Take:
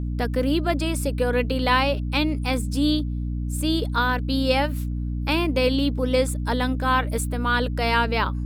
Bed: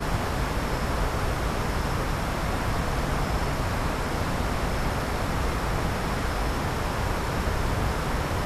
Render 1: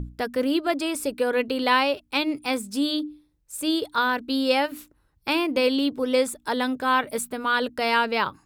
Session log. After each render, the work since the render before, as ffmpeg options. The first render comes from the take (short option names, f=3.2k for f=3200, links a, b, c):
-af "bandreject=f=60:t=h:w=6,bandreject=f=120:t=h:w=6,bandreject=f=180:t=h:w=6,bandreject=f=240:t=h:w=6,bandreject=f=300:t=h:w=6"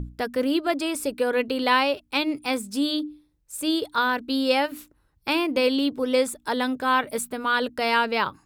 -af anull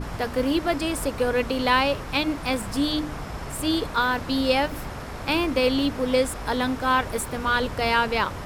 -filter_complex "[1:a]volume=-7.5dB[a];[0:a][a]amix=inputs=2:normalize=0"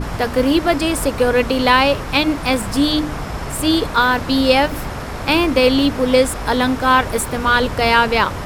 -af "volume=8dB,alimiter=limit=-1dB:level=0:latency=1"